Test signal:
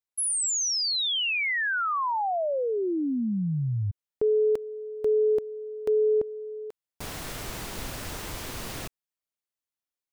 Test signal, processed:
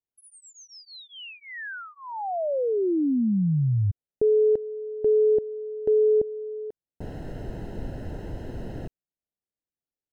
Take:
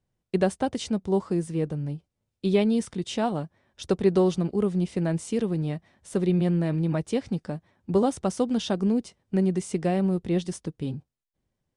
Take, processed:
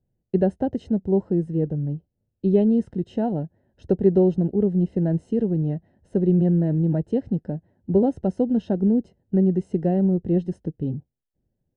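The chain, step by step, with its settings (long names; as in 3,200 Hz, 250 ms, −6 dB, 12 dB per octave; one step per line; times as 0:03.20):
moving average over 38 samples
level +5 dB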